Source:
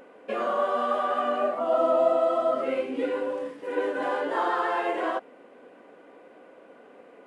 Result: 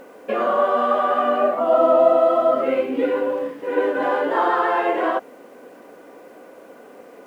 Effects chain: LPF 2700 Hz 6 dB/oct; bit-crush 11-bit; gain +7.5 dB

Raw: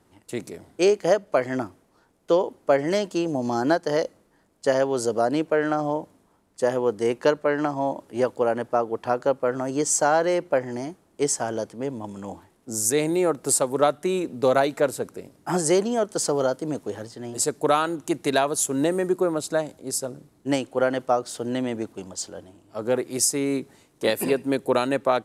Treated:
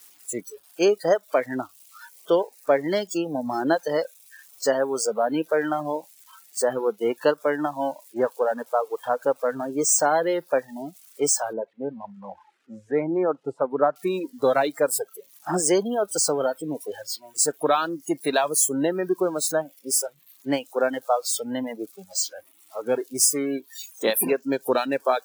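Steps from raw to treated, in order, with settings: switching spikes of -18.5 dBFS; 11.53–13.96 LPF 1800 Hz 12 dB/oct; spectral noise reduction 21 dB; HPF 150 Hz; reverb removal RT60 0.64 s

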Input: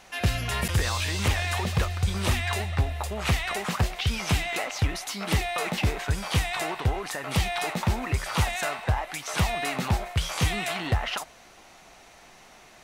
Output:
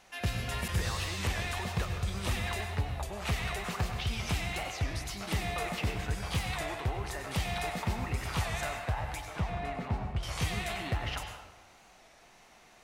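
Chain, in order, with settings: 9.25–10.24 LPF 1100 Hz 6 dB/oct; reverb RT60 1.1 s, pre-delay 89 ms, DRR 4.5 dB; record warp 33 1/3 rpm, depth 100 cents; gain -8 dB

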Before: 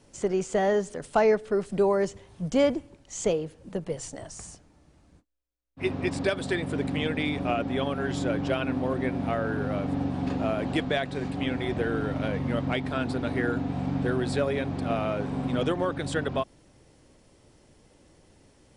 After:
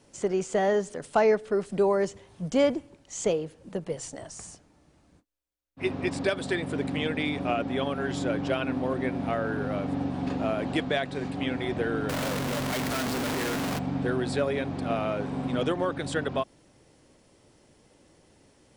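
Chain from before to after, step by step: 12.09–13.79 infinite clipping; low shelf 83 Hz -9 dB

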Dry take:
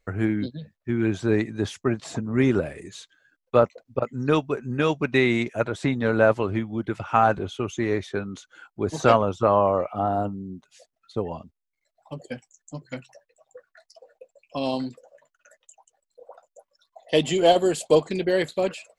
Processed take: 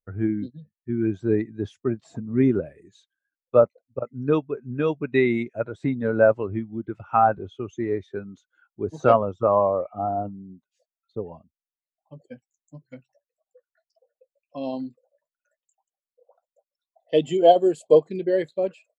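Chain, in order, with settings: spectral expander 1.5:1

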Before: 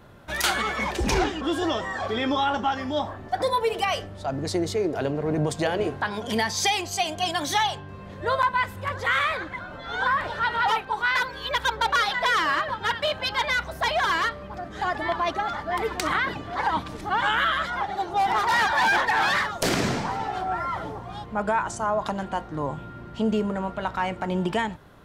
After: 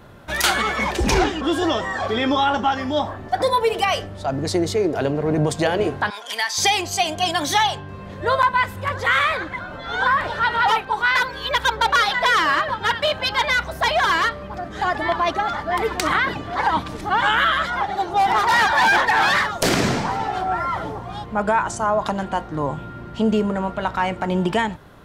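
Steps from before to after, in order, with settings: 6.1–6.58 HPF 1100 Hz 12 dB/oct; gain +5 dB

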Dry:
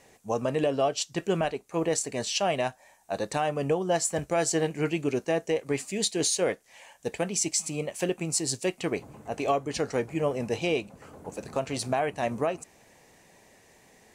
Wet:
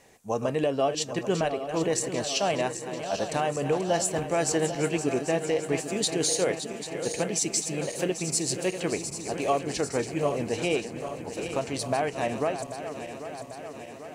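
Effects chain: regenerating reverse delay 0.396 s, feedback 79%, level -10 dB

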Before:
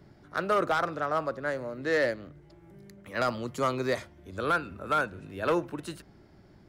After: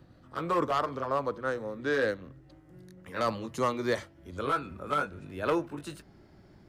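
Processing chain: gliding pitch shift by -2.5 st ending unshifted

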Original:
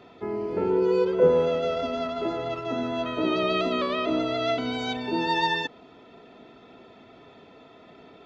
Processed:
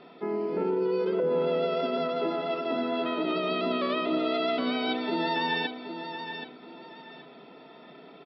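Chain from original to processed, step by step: FFT band-pass 130–5600 Hz; limiter -20 dBFS, peak gain reduction 11 dB; on a send: feedback echo 0.776 s, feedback 27%, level -9 dB

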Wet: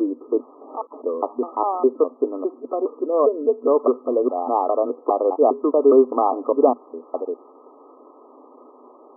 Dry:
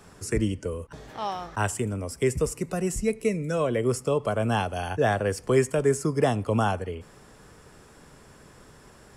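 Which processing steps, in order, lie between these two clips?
slices in reverse order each 0.204 s, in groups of 3; FFT band-pass 240–1300 Hz; gain +8 dB

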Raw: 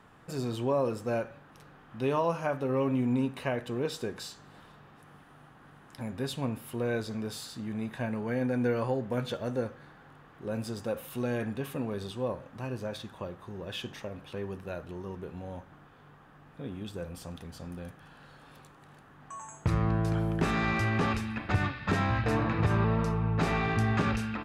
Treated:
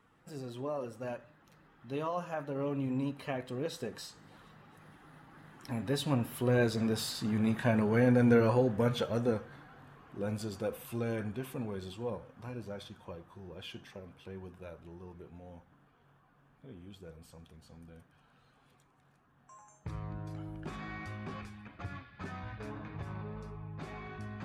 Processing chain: bin magnitudes rounded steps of 15 dB; Doppler pass-by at 7.51, 18 m/s, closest 25 m; gain +5.5 dB

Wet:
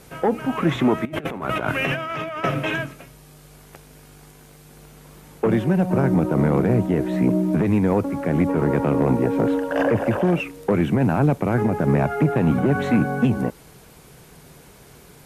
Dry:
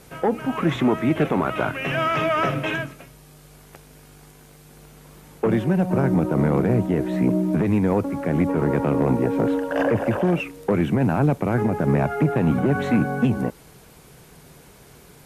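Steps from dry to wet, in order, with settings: 1.05–2.44 negative-ratio compressor -26 dBFS, ratio -0.5; gain +1 dB

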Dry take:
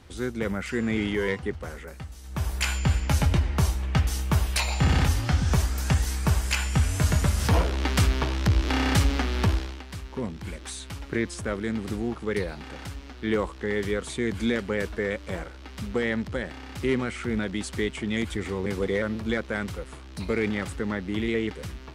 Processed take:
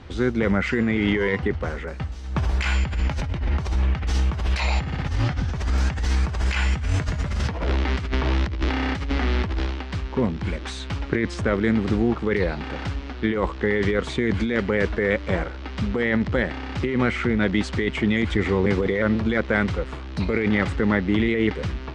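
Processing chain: dynamic EQ 2000 Hz, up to +4 dB, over -45 dBFS, Q 6.4; negative-ratio compressor -28 dBFS, ratio -1; air absorption 150 m; gain +6.5 dB

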